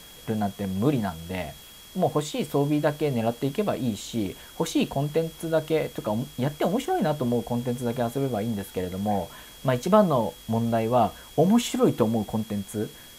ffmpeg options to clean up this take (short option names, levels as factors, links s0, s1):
-af "bandreject=f=3300:w=30,afftdn=nr=24:nf=-46"